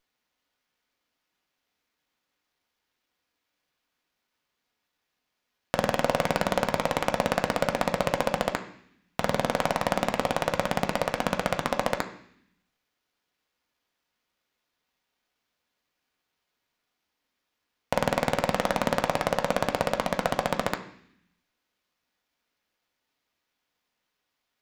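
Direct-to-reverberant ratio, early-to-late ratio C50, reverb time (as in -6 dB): 4.0 dB, 11.5 dB, 0.65 s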